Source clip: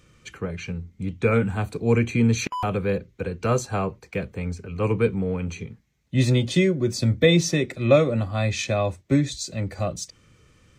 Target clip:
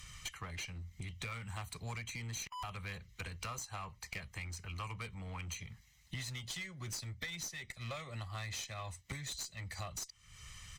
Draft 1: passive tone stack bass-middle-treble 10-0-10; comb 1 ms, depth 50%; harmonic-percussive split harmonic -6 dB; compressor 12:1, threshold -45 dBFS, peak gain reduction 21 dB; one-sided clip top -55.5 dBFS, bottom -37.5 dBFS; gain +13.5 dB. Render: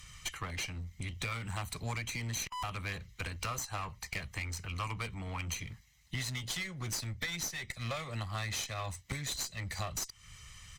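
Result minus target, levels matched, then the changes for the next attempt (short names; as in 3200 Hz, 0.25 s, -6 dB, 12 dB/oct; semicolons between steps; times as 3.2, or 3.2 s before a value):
compressor: peak gain reduction -7 dB
change: compressor 12:1, threshold -52.5 dBFS, peak gain reduction 27.5 dB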